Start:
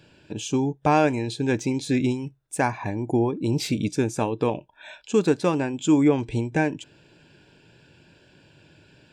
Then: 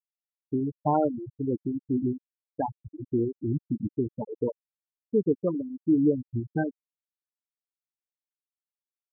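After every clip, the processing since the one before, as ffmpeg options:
ffmpeg -i in.wav -af "afftfilt=real='re*gte(hypot(re,im),0.355)':imag='im*gte(hypot(re,im),0.355)':win_size=1024:overlap=0.75,volume=-3.5dB" out.wav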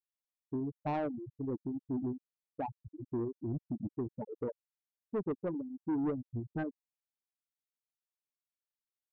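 ffmpeg -i in.wav -af "asoftclip=type=tanh:threshold=-22dB,volume=-6.5dB" out.wav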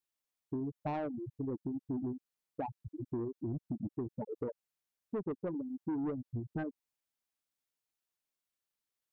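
ffmpeg -i in.wav -af "acompressor=threshold=-40dB:ratio=3,volume=4dB" out.wav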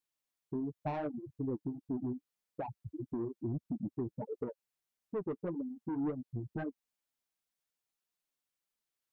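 ffmpeg -i in.wav -af "flanger=delay=3.8:depth=5:regen=-28:speed=1.6:shape=triangular,volume=3.5dB" out.wav

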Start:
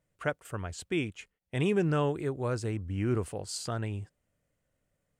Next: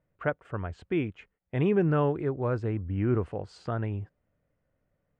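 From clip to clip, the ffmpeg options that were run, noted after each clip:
ffmpeg -i in.wav -af "lowpass=1800,volume=3dB" out.wav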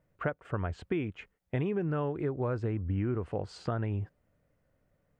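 ffmpeg -i in.wav -af "acompressor=threshold=-31dB:ratio=12,volume=3.5dB" out.wav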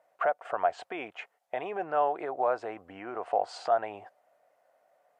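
ffmpeg -i in.wav -af "alimiter=level_in=1.5dB:limit=-24dB:level=0:latency=1:release=34,volume=-1.5dB,highpass=frequency=710:width_type=q:width=5.7,volume=5dB" -ar 32000 -c:a libmp3lame -b:a 80k out.mp3

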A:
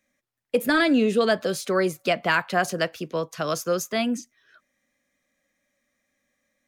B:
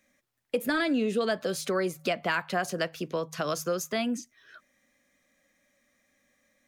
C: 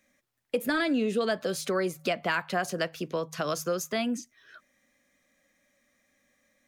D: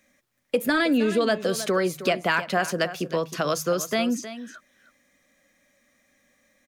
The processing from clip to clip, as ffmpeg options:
ffmpeg -i in.wav -af "bandreject=frequency=52.18:width_type=h:width=4,bandreject=frequency=104.36:width_type=h:width=4,bandreject=frequency=156.54:width_type=h:width=4,acompressor=threshold=-38dB:ratio=2,volume=4.5dB" out.wav
ffmpeg -i in.wav -af anull out.wav
ffmpeg -i in.wav -af "aecho=1:1:314:0.224,volume=5dB" out.wav

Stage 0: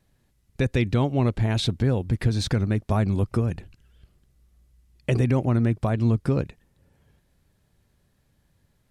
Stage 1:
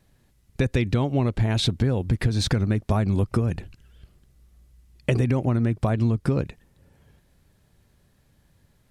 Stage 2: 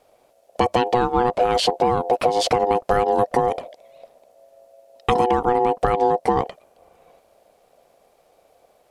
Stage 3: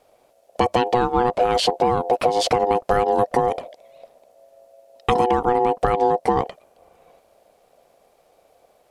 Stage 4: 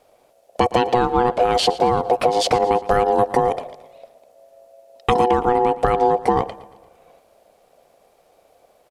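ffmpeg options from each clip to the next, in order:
ffmpeg -i in.wav -af "acompressor=threshold=-22dB:ratio=6,volume=4.5dB" out.wav
ffmpeg -i in.wav -af "aeval=exprs='val(0)*sin(2*PI*610*n/s)':channel_layout=same,volume=6dB" out.wav
ffmpeg -i in.wav -af anull out.wav
ffmpeg -i in.wav -af "aecho=1:1:115|230|345|460:0.126|0.0642|0.0327|0.0167,volume=1.5dB" out.wav

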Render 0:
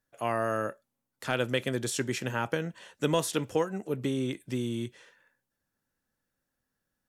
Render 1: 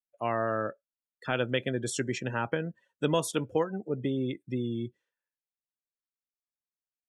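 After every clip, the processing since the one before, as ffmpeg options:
ffmpeg -i in.wav -af "afftdn=noise_reduction=29:noise_floor=-39" out.wav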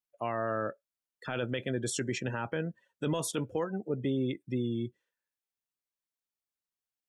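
ffmpeg -i in.wav -af "alimiter=limit=-22dB:level=0:latency=1:release=12" out.wav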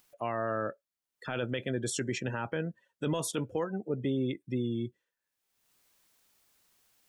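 ffmpeg -i in.wav -af "acompressor=mode=upward:threshold=-49dB:ratio=2.5" out.wav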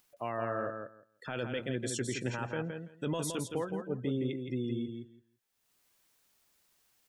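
ffmpeg -i in.wav -af "aecho=1:1:167|334|501:0.501|0.0802|0.0128,volume=-3dB" out.wav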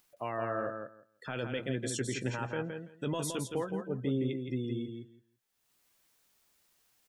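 ffmpeg -i in.wav -filter_complex "[0:a]asplit=2[link_01][link_02];[link_02]adelay=15,volume=-12dB[link_03];[link_01][link_03]amix=inputs=2:normalize=0" out.wav

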